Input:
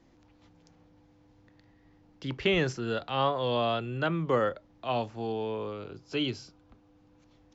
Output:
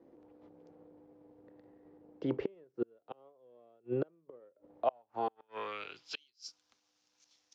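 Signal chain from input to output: inverted gate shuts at -24 dBFS, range -36 dB; waveshaping leveller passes 1; band-pass sweep 440 Hz -> 5.8 kHz, 4.64–6.48 s; trim +8.5 dB

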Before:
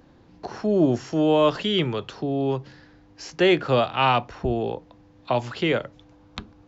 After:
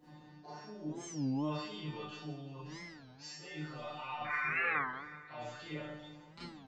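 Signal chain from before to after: high-pass 45 Hz; band-stop 1.6 kHz, Q 24; comb 5.6 ms, depth 58%; peak limiter -17 dBFS, peak gain reduction 11 dB; reverse; compression 6:1, threshold -39 dBFS, peak gain reduction 17 dB; reverse; painted sound noise, 4.24–4.81 s, 1–2.5 kHz -33 dBFS; feedback comb 150 Hz, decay 0.3 s, harmonics all, mix 100%; on a send: feedback delay 172 ms, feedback 59%, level -15 dB; on the sum: Schroeder reverb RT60 0.44 s, combs from 26 ms, DRR -8.5 dB; warped record 33 1/3 rpm, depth 250 cents; trim +1 dB

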